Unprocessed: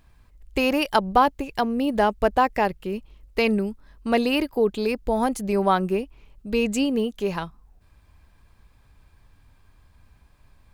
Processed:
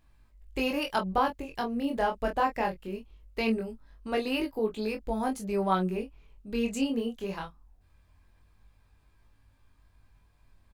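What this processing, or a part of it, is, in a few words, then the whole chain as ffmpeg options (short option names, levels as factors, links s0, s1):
double-tracked vocal: -filter_complex "[0:a]asplit=2[s0][s1];[s1]adelay=22,volume=0.398[s2];[s0][s2]amix=inputs=2:normalize=0,flanger=delay=18.5:depth=7.5:speed=0.21,volume=0.562"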